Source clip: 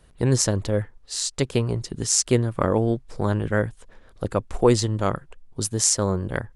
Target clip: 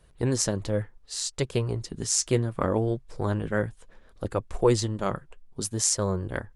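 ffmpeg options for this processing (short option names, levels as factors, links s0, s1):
-af "flanger=delay=1.8:depth=4.4:regen=-62:speed=0.66:shape=sinusoidal"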